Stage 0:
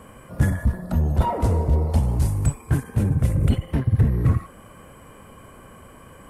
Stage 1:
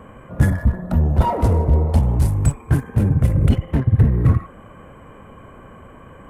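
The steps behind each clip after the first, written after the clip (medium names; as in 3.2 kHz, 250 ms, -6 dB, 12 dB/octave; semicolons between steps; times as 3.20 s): local Wiener filter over 9 samples; trim +4 dB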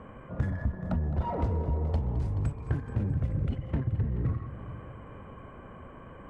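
compression, threshold -21 dBFS, peak gain reduction 12.5 dB; distance through air 130 m; multi-head delay 214 ms, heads first and second, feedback 47%, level -15.5 dB; trim -5 dB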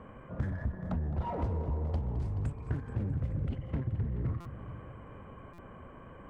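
in parallel at -11 dB: hard clipper -32 dBFS, distortion -7 dB; on the sum: buffer glitch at 4.40/5.53 s, samples 256, times 8; loudspeaker Doppler distortion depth 0.31 ms; trim -5 dB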